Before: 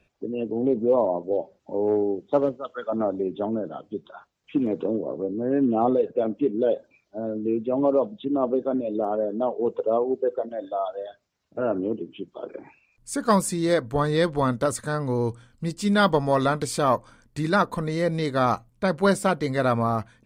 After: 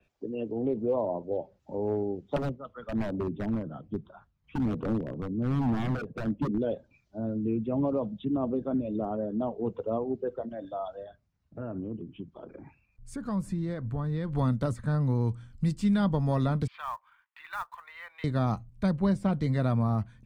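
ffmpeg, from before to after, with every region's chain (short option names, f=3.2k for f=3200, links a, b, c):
-filter_complex "[0:a]asettb=1/sr,asplit=3[a][b][c];[a]atrim=end=2.364[d];[b]atrim=start=2.36:end=6.58,asetpts=PTS-STARTPTS,afade=t=in:d=0.004:c=qsin,afade=t=out:st=4.216:d=0.004:c=qsin,lowpass=f=1.5k:p=1,aeval=exprs='0.0841*(abs(mod(val(0)/0.0841+3,4)-2)-1)':c=same,aphaser=in_gain=1:out_gain=1:delay=1:decay=0.33:speed=1.2:type=triangular[e];[c]atrim=start=6.576[f];[d][e]acrossfade=d=0.004:c1=hsin:c2=qsin[g];[g][f]acrossfade=d=0.004:c1=qsin:c2=hsin,asettb=1/sr,asplit=3[h][i][j];[h]atrim=end=11.044[k];[i]atrim=start=11.04:end=14.33,asetpts=PTS-STARTPTS,afade=t=in:d=0.004:c=qsin,afade=t=out:st=3.286:d=0.004:c=qsin,highshelf=f=2.6k:g=-11,acompressor=threshold=-33dB:ratio=2:attack=3.2:release=140:knee=1:detection=peak[l];[j]atrim=start=14.326[m];[k][l]acrossfade=d=0.004:c1=hsin:c2=qsin[n];[n][m]acrossfade=d=0.004:c1=qsin:c2=hsin,asettb=1/sr,asplit=3[o][p][q];[o]atrim=end=16.674[r];[p]atrim=start=16.67:end=18.24,asetpts=PTS-STARTPTS,afade=t=in:d=0.004:c=qsin,afade=t=out:st=1.566:d=0.004:c=qsin,asuperpass=centerf=1700:order=8:qfactor=0.75,acrusher=bits=6:mode=log:mix=0:aa=0.000001[s];[q]atrim=start=18.236[t];[r][s]acrossfade=d=0.004:c1=hsin:c2=qsin[u];[u][t]acrossfade=d=0.004:c1=qsin:c2=hsin,asettb=1/sr,asplit=3[v][w][x];[v]atrim=end=18.914[y];[w]atrim=start=18.91:end=19.33,asetpts=PTS-STARTPTS,afade=t=in:d=0.004:c=qsin,afade=t=out:st=0.416:d=0.004:c=qsin,lowpass=f=1.9k:p=1,bandreject=f=1.4k:w=16[z];[x]atrim=start=19.326[aa];[y][z]acrossfade=d=0.004:c1=hsin:c2=qsin[ab];[ab][aa]acrossfade=d=0.004:c1=qsin:c2=hsin,asubboost=boost=7.5:cutoff=150,acrossover=split=130|990|2900[ac][ad][ae][af];[ac]acompressor=threshold=-34dB:ratio=4[ag];[ad]acompressor=threshold=-19dB:ratio=4[ah];[ae]acompressor=threshold=-41dB:ratio=4[ai];[af]acompressor=threshold=-42dB:ratio=4[aj];[ag][ah][ai][aj]amix=inputs=4:normalize=0,adynamicequalizer=threshold=0.002:dfrequency=4500:dqfactor=0.7:tfrequency=4500:tqfactor=0.7:attack=5:release=100:ratio=0.375:range=4:mode=cutabove:tftype=highshelf,volume=-4.5dB"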